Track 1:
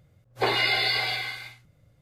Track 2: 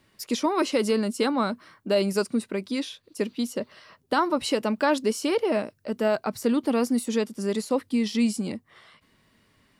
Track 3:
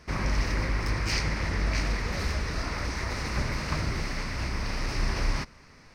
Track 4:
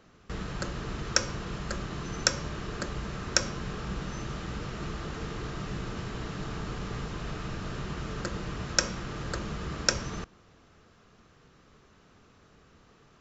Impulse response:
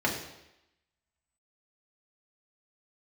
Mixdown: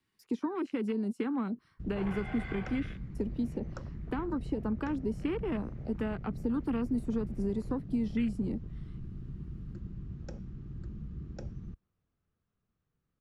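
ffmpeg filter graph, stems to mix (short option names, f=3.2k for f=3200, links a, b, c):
-filter_complex "[0:a]highshelf=f=2.2k:t=q:w=1.5:g=-11.5,asoftclip=type=tanh:threshold=-28dB,adelay=1550,volume=-8.5dB[a];[1:a]equalizer=f=590:w=3.9:g=-14,acrossover=split=240|970|2500[b][c][d][e];[b]acompressor=threshold=-34dB:ratio=4[f];[c]acompressor=threshold=-34dB:ratio=4[g];[d]acompressor=threshold=-41dB:ratio=4[h];[e]acompressor=threshold=-46dB:ratio=4[i];[f][g][h][i]amix=inputs=4:normalize=0,volume=-0.5dB[j];[2:a]lowpass=f=2.6k:w=0.5412,lowpass=f=2.6k:w=1.3066,adelay=2400,volume=-17.5dB[k];[3:a]bass=f=250:g=10,treble=f=4k:g=-6,adelay=1500,volume=-13.5dB[l];[a][j][k][l]amix=inputs=4:normalize=0,afwtdn=0.01,acrossover=split=440[m][n];[n]acompressor=threshold=-43dB:ratio=2[o];[m][o]amix=inputs=2:normalize=0"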